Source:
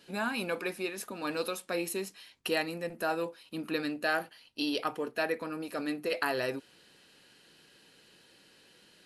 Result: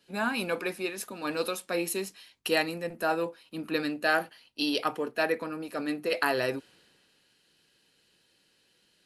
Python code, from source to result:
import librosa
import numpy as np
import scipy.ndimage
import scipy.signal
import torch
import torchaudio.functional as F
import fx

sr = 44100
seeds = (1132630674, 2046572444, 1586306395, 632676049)

y = fx.band_widen(x, sr, depth_pct=40)
y = y * 10.0 ** (3.0 / 20.0)